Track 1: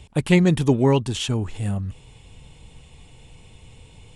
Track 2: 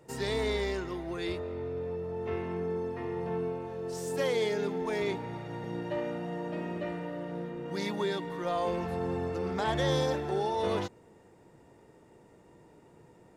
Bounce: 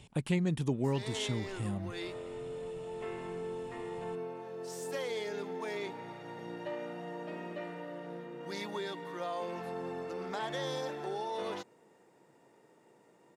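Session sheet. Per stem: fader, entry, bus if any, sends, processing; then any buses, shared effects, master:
−6.0 dB, 0.00 s, no send, no processing
−2.5 dB, 0.75 s, no send, high-pass filter 440 Hz 6 dB per octave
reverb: not used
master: low shelf with overshoot 100 Hz −8.5 dB, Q 1.5; downward compressor 2 to 1, threshold −35 dBFS, peak gain reduction 10.5 dB

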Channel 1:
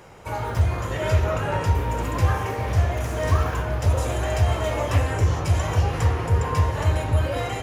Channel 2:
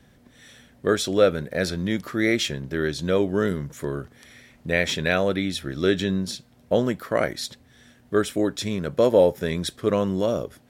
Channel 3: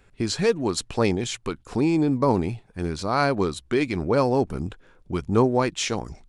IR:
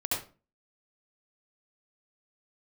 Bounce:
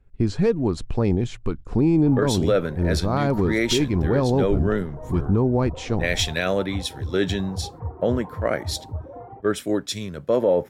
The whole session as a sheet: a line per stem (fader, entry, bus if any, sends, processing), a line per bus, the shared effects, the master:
−2.0 dB, 1.80 s, no send, reverb reduction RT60 1.1 s; transistor ladder low-pass 970 Hz, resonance 35%; parametric band 600 Hz −9 dB 0.29 octaves
0.0 dB, 1.30 s, no send, noise gate −47 dBFS, range −14 dB; multiband upward and downward expander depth 100%
−3.0 dB, 0.00 s, no send, noise gate −53 dBFS, range −11 dB; spectral tilt −3.5 dB per octave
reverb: not used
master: brickwall limiter −10.5 dBFS, peak gain reduction 10.5 dB

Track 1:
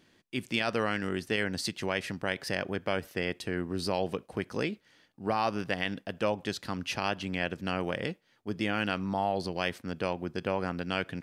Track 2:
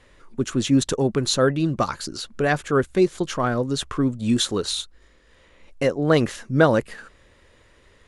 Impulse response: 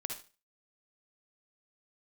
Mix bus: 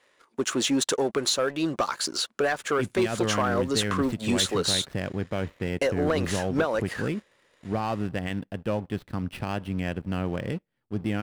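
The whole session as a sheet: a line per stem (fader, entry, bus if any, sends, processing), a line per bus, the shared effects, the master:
−10.0 dB, 2.45 s, no send, running median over 9 samples; low-shelf EQ 430 Hz +6.5 dB; notch filter 6,800 Hz, Q 5.4
−2.5 dB, 0.00 s, no send, high-pass filter 470 Hz 12 dB per octave; downward compressor 12 to 1, threshold −25 dBFS, peak gain reduction 13.5 dB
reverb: not used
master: low-shelf EQ 110 Hz +11 dB; leveller curve on the samples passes 2

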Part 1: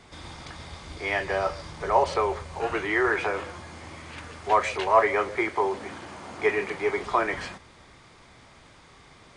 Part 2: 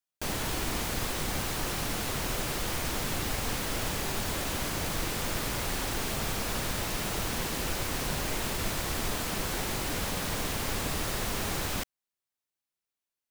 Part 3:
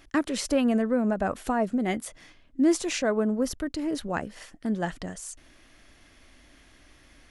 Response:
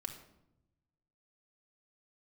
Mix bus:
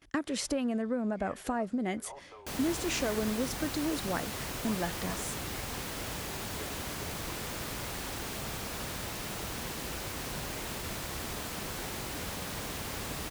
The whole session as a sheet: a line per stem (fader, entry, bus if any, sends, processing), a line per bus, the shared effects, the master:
−17.0 dB, 0.15 s, no send, automatic ducking −10 dB, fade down 0.95 s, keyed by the third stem
−5.5 dB, 2.25 s, no send, no processing
−1.5 dB, 0.00 s, no send, noise gate with hold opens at −46 dBFS; downward compressor 5 to 1, threshold −27 dBFS, peak gain reduction 9.5 dB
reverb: not used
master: high-pass filter 41 Hz

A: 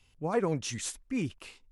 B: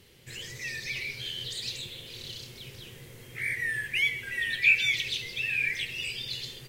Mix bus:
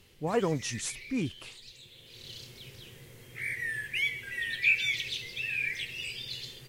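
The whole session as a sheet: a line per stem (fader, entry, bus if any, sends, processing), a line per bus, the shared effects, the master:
+0.5 dB, 0.00 s, no send, no processing
−3.5 dB, 0.00 s, no send, automatic ducking −12 dB, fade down 1.55 s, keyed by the first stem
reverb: not used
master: no processing

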